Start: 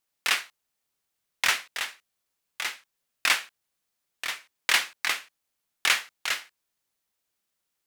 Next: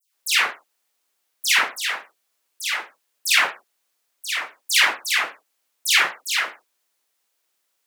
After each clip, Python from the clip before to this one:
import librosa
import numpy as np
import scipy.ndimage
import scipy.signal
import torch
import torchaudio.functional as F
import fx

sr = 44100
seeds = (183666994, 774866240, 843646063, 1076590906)

y = fx.diode_clip(x, sr, knee_db=-13.0)
y = scipy.signal.sosfilt(scipy.signal.butter(2, 340.0, 'highpass', fs=sr, output='sos'), y)
y = fx.dispersion(y, sr, late='lows', ms=149.0, hz=2200.0)
y = F.gain(torch.from_numpy(y), 8.0).numpy()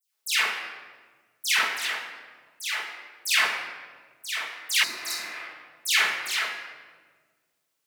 y = fx.room_shoebox(x, sr, seeds[0], volume_m3=1400.0, walls='mixed', distance_m=1.5)
y = fx.spec_repair(y, sr, seeds[1], start_s=4.86, length_s=0.51, low_hz=390.0, high_hz=3700.0, source='after')
y = F.gain(torch.from_numpy(y), -6.5).numpy()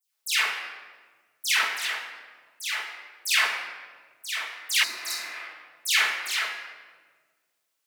y = fx.low_shelf(x, sr, hz=310.0, db=-11.0)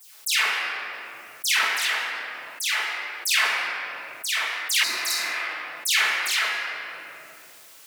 y = fx.env_flatten(x, sr, amount_pct=50)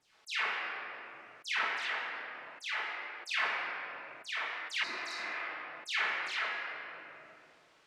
y = fx.spacing_loss(x, sr, db_at_10k=29)
y = F.gain(torch.from_numpy(y), -4.5).numpy()